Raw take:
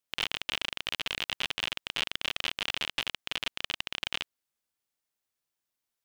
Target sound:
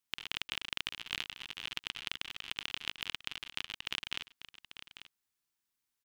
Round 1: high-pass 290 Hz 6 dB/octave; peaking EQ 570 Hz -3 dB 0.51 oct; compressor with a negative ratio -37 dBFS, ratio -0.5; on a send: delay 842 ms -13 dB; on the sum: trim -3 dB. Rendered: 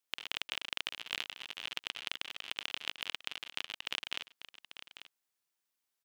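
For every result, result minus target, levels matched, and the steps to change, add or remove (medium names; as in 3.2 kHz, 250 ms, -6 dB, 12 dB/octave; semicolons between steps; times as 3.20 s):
500 Hz band +3.5 dB; 250 Hz band -3.0 dB
change: peaking EQ 570 Hz -14 dB 0.51 oct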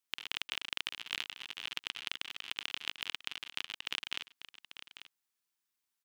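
250 Hz band -3.5 dB
remove: high-pass 290 Hz 6 dB/octave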